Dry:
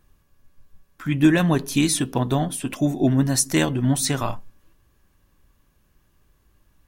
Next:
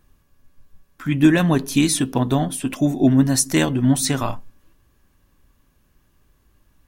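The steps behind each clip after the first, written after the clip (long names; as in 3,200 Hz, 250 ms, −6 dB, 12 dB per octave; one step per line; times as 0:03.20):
parametric band 260 Hz +4.5 dB 0.2 octaves
level +1.5 dB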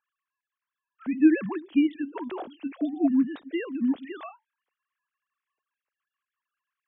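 three sine waves on the formant tracks
level −8 dB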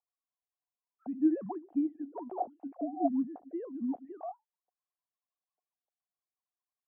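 transistor ladder low-pass 770 Hz, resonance 80%
level +2.5 dB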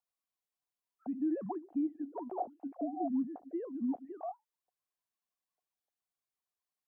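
brickwall limiter −26.5 dBFS, peak gain reduction 10.5 dB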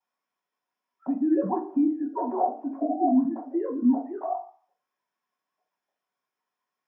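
convolution reverb RT60 0.50 s, pre-delay 3 ms, DRR −15 dB
level −5.5 dB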